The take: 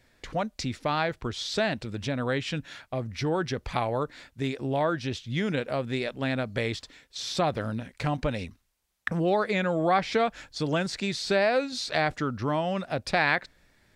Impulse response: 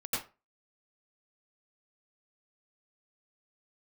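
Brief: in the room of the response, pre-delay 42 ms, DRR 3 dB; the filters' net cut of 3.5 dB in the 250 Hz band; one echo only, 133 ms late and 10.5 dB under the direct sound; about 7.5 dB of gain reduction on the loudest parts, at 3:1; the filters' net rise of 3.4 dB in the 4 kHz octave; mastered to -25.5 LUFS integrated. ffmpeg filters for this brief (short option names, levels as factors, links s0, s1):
-filter_complex "[0:a]equalizer=f=250:t=o:g=-5,equalizer=f=4000:t=o:g=4,acompressor=threshold=0.0316:ratio=3,aecho=1:1:133:0.299,asplit=2[s0][s1];[1:a]atrim=start_sample=2205,adelay=42[s2];[s1][s2]afir=irnorm=-1:irlink=0,volume=0.398[s3];[s0][s3]amix=inputs=2:normalize=0,volume=2"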